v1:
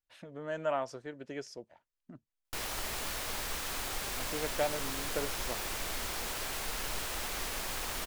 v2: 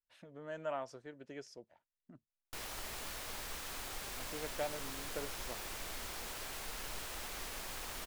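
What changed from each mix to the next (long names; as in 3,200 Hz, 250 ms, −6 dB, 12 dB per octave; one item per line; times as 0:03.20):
speech −7.0 dB
background −7.0 dB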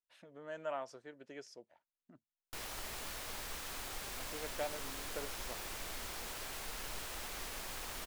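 speech: add low-shelf EQ 170 Hz −11.5 dB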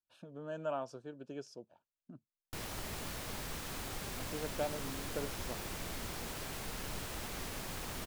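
speech: add Butterworth band-reject 2,000 Hz, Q 2.8
master: add parametric band 140 Hz +12 dB 2.7 octaves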